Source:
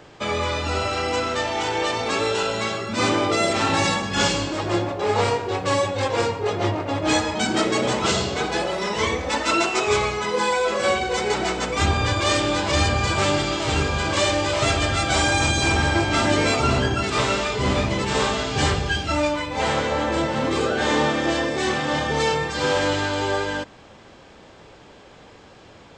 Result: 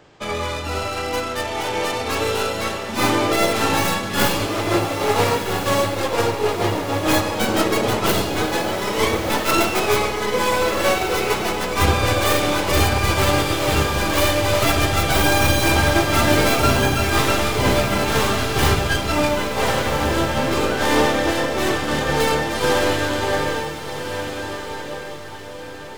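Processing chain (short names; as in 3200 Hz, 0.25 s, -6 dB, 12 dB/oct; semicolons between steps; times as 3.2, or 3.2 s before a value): tracing distortion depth 0.2 ms; on a send: diffused feedback echo 1.407 s, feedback 52%, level -5 dB; on the sum: upward expander 1.5:1, over -30 dBFS; gain +3 dB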